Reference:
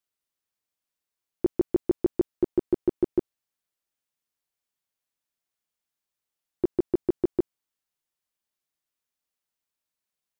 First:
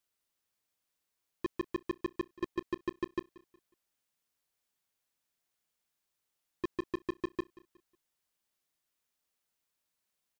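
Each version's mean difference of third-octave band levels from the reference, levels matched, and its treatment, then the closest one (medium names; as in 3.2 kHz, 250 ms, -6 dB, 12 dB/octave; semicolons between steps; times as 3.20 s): 8.0 dB: saturation -31.5 dBFS, distortion -8 dB; on a send: feedback delay 182 ms, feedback 35%, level -21 dB; on the sum: trim +3 dB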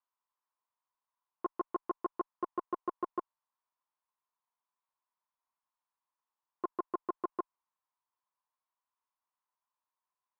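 6.0 dB: in parallel at +1 dB: one-sided clip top -25.5 dBFS, bottom -17.5 dBFS; on the sum: band-pass filter 1 kHz, Q 7.4; trim +6 dB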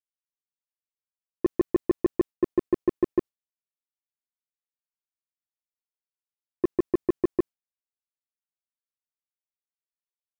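2.0 dB: gate with hold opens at -24 dBFS; waveshaping leveller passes 1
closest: third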